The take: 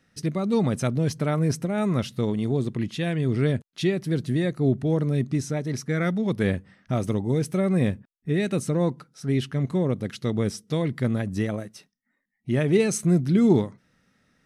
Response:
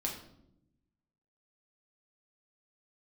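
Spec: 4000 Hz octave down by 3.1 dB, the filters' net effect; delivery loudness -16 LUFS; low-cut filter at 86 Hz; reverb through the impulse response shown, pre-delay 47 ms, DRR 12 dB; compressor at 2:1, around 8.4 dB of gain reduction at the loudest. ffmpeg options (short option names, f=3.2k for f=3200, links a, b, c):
-filter_complex "[0:a]highpass=86,equalizer=f=4k:t=o:g=-4,acompressor=threshold=-30dB:ratio=2,asplit=2[a][b];[1:a]atrim=start_sample=2205,adelay=47[c];[b][c]afir=irnorm=-1:irlink=0,volume=-14dB[d];[a][d]amix=inputs=2:normalize=0,volume=14.5dB"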